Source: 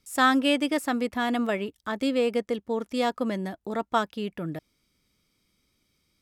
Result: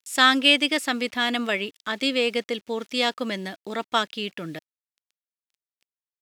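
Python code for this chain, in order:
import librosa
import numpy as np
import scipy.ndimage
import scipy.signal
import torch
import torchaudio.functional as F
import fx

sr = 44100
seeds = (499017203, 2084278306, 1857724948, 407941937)

y = fx.quant_dither(x, sr, seeds[0], bits=10, dither='none')
y = fx.weighting(y, sr, curve='D')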